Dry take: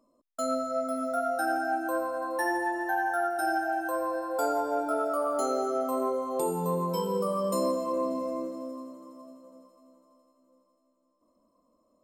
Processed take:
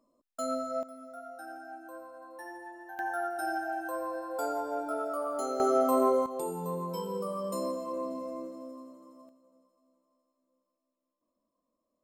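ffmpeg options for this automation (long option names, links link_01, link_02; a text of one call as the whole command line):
ffmpeg -i in.wav -af "asetnsamples=nb_out_samples=441:pad=0,asendcmd='0.83 volume volume -16dB;2.99 volume volume -5dB;5.6 volume volume 4dB;6.26 volume volume -6dB;9.29 volume volume -13dB',volume=-3.5dB" out.wav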